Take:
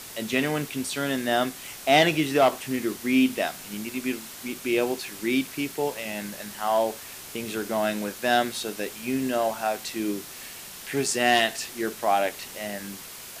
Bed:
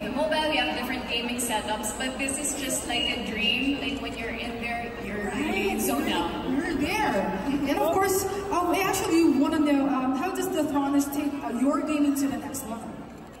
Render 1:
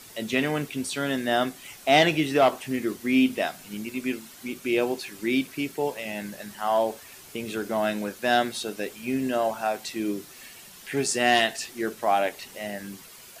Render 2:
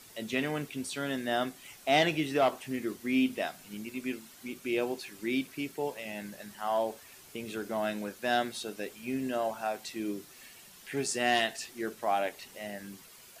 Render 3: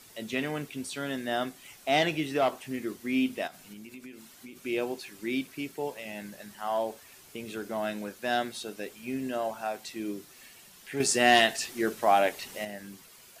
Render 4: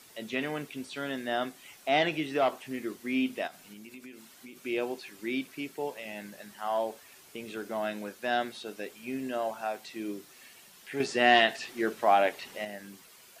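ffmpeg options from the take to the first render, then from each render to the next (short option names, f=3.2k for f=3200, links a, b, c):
-af "afftdn=nr=8:nf=-42"
-af "volume=-6.5dB"
-filter_complex "[0:a]asettb=1/sr,asplit=3[a][b][c];[a]atrim=end=3.474[d];[b]atrim=start=3.47:end=4.63,asetpts=PTS-STARTPTS,afade=t=in:d=0.004:c=qsin,afade=t=out:st=1.156:d=0.004:c=qsin,acompressor=threshold=-41dB:ratio=10:attack=3.2:release=140:knee=1:detection=peak[e];[c]atrim=start=4.626[f];[d][e]acrossfade=d=0.004:c1=hsin:c2=qsin[g];[g][f]acrossfade=d=0.004:c1=qsin:c2=hsin,asettb=1/sr,asplit=3[h][i][j];[h]atrim=end=11.004[k];[i]atrim=start=11:end=12.65,asetpts=PTS-STARTPTS,afade=t=in:d=0.004:c=qsin,afade=t=out:st=1.646:d=0.004:c=qsin,acontrast=76[l];[j]atrim=start=12.646[m];[k][l]acrossfade=d=0.004:c1=hsin:c2=qsin[n];[n][m]acrossfade=d=0.004:c1=qsin:c2=hsin"
-filter_complex "[0:a]acrossover=split=4200[a][b];[b]acompressor=threshold=-52dB:ratio=4:attack=1:release=60[c];[a][c]amix=inputs=2:normalize=0,lowshelf=f=120:g=-11"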